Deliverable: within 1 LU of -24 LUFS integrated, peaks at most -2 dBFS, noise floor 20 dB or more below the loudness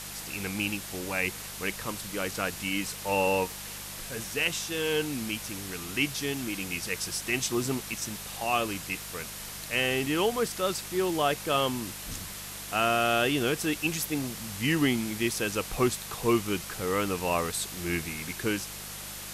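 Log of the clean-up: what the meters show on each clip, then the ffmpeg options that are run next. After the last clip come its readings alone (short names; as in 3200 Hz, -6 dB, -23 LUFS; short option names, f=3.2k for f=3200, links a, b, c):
hum 50 Hz; harmonics up to 200 Hz; hum level -47 dBFS; noise floor -40 dBFS; noise floor target -50 dBFS; loudness -29.5 LUFS; peak -13.0 dBFS; loudness target -24.0 LUFS
-> -af "bandreject=f=50:t=h:w=4,bandreject=f=100:t=h:w=4,bandreject=f=150:t=h:w=4,bandreject=f=200:t=h:w=4"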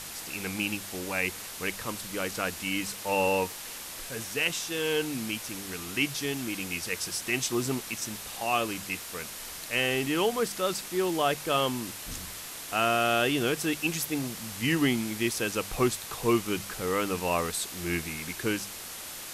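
hum none; noise floor -41 dBFS; noise floor target -50 dBFS
-> -af "afftdn=nr=9:nf=-41"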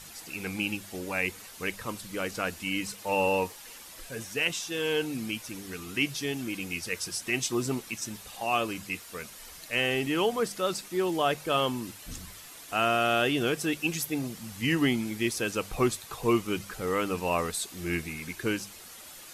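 noise floor -47 dBFS; noise floor target -50 dBFS
-> -af "afftdn=nr=6:nf=-47"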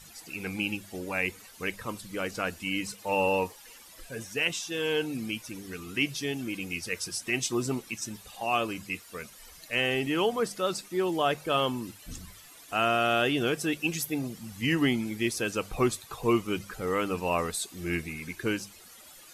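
noise floor -51 dBFS; loudness -30.0 LUFS; peak -13.0 dBFS; loudness target -24.0 LUFS
-> -af "volume=6dB"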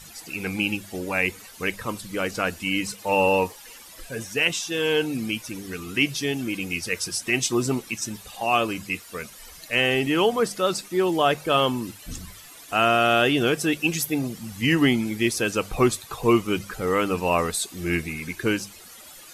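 loudness -24.0 LUFS; peak -7.0 dBFS; noise floor -45 dBFS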